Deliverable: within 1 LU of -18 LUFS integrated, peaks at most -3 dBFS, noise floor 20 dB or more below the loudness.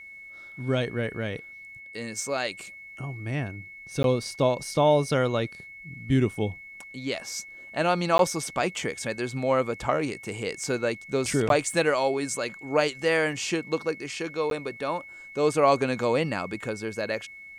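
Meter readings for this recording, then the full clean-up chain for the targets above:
dropouts 4; longest dropout 12 ms; steady tone 2.2 kHz; tone level -42 dBFS; loudness -27.0 LUFS; peak level -7.5 dBFS; loudness target -18.0 LUFS
-> interpolate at 4.03/8.18/11.49/14.50 s, 12 ms; band-stop 2.2 kHz, Q 30; trim +9 dB; peak limiter -3 dBFS

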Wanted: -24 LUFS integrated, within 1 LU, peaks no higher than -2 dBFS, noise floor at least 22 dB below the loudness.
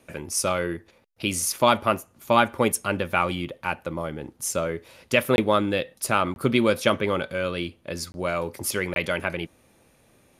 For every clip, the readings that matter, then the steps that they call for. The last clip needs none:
dropouts 4; longest dropout 21 ms; loudness -25.0 LUFS; peak level -4.5 dBFS; loudness target -24.0 LUFS
-> interpolate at 5.36/6.34/8.12/8.94 s, 21 ms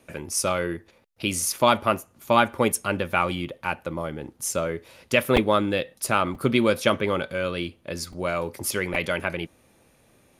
dropouts 0; loudness -25.0 LUFS; peak level -4.5 dBFS; loudness target -24.0 LUFS
-> trim +1 dB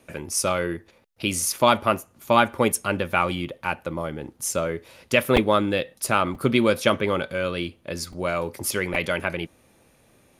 loudness -24.0 LUFS; peak level -3.5 dBFS; noise floor -60 dBFS

